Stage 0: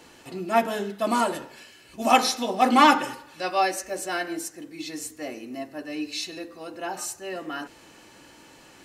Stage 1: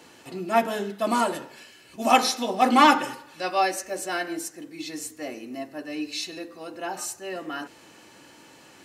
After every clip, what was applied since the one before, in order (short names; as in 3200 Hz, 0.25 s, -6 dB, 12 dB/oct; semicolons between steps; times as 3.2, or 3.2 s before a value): HPF 91 Hz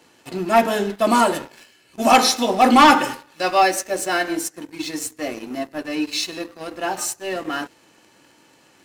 sample leveller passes 2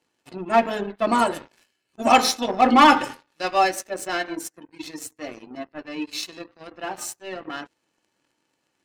spectral gate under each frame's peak -30 dB strong; power-law curve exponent 1.4